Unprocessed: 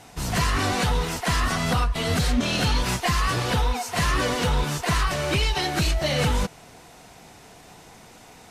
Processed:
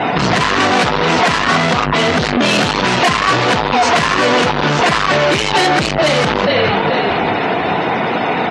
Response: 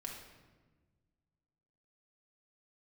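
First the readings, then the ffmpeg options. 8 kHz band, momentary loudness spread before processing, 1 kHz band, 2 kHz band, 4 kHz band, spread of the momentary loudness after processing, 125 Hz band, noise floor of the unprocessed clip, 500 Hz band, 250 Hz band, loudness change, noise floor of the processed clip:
+5.0 dB, 2 LU, +14.5 dB, +13.5 dB, +11.0 dB, 4 LU, +4.5 dB, -48 dBFS, +15.0 dB, +11.0 dB, +10.5 dB, -18 dBFS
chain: -filter_complex "[0:a]lowpass=3.2k,asplit=2[a][b];[b]acompressor=threshold=-29dB:ratio=6,volume=-1.5dB[c];[a][c]amix=inputs=2:normalize=0,asplit=4[d][e][f][g];[e]adelay=435,afreqshift=-46,volume=-15dB[h];[f]adelay=870,afreqshift=-92,volume=-23.6dB[i];[g]adelay=1305,afreqshift=-138,volume=-32.3dB[j];[d][h][i][j]amix=inputs=4:normalize=0,asoftclip=type=tanh:threshold=-28dB,highpass=200,afftdn=nr=25:nf=-54,alimiter=level_in=32.5dB:limit=-1dB:release=50:level=0:latency=1,volume=-4dB"

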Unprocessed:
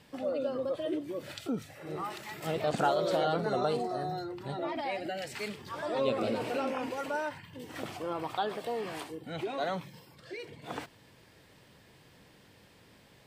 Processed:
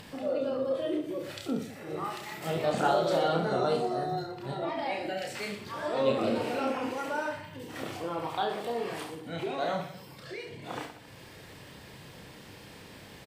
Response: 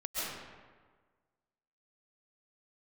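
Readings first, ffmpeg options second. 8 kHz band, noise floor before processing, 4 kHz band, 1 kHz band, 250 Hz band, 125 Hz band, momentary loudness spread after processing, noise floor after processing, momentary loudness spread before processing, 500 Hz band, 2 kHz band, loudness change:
+2.5 dB, -60 dBFS, +2.5 dB, +2.0 dB, +2.5 dB, +2.5 dB, 21 LU, -50 dBFS, 13 LU, +2.5 dB, +2.5 dB, +2.0 dB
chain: -filter_complex "[0:a]acompressor=mode=upward:threshold=-41dB:ratio=2.5,asplit=2[a][b];[b]aecho=0:1:30|69|119.7|185.6|271.3:0.631|0.398|0.251|0.158|0.1[c];[a][c]amix=inputs=2:normalize=0"

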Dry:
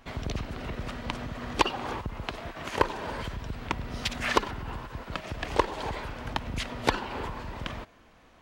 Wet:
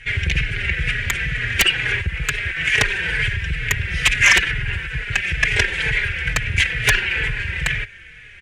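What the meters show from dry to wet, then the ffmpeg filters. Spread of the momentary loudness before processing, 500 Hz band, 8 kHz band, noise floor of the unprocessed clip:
10 LU, -1.0 dB, +17.5 dB, -57 dBFS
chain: -filter_complex "[0:a]asplit=2[a][b];[b]volume=17dB,asoftclip=hard,volume=-17dB,volume=-6dB[c];[a][c]amix=inputs=2:normalize=0,firequalizer=gain_entry='entry(150,0);entry(230,-21);entry(420,-7);entry(640,-20);entry(1100,-21);entry(1600,9);entry(2300,13);entry(4200,-6);entry(9500,1);entry(14000,-25)':delay=0.05:min_phase=1,aeval=exprs='1.06*sin(PI/2*4.47*val(0)/1.06)':c=same,asplit=2[d][e];[e]adelay=4.2,afreqshift=-2.2[f];[d][f]amix=inputs=2:normalize=1,volume=-4.5dB"

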